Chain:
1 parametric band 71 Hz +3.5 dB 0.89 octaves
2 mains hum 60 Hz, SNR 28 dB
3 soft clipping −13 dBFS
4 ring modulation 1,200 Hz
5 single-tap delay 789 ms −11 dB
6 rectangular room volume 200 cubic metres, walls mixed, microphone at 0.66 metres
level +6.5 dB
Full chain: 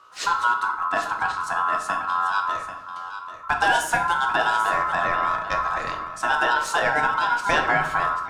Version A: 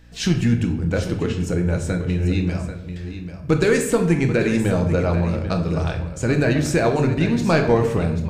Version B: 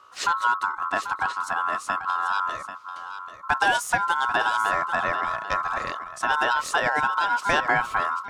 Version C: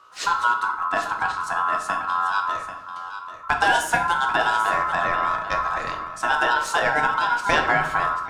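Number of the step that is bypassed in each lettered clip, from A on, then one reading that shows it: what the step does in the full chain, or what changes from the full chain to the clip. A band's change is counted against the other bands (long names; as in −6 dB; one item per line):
4, 125 Hz band +22.0 dB
6, echo-to-direct ratio −2.5 dB to −11.0 dB
3, distortion level −24 dB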